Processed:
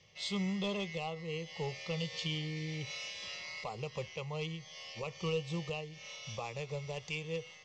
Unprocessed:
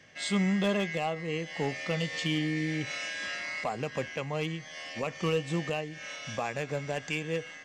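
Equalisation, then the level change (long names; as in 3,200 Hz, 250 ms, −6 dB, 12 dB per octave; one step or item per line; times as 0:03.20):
low-pass filter 5,900 Hz 24 dB per octave
parametric band 670 Hz −12.5 dB 0.6 octaves
phaser with its sweep stopped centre 660 Hz, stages 4
0.0 dB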